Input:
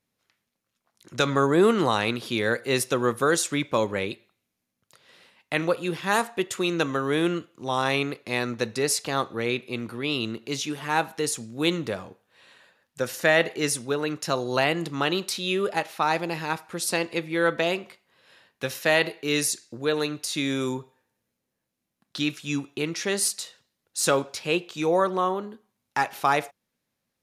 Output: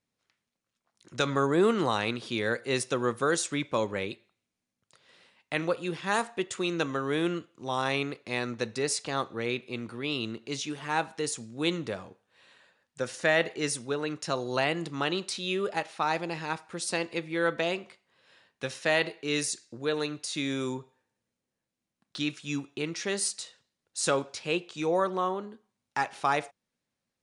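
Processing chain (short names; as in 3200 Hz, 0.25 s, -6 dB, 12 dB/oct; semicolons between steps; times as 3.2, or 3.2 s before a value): steep low-pass 9900 Hz 72 dB/oct; gain -4.5 dB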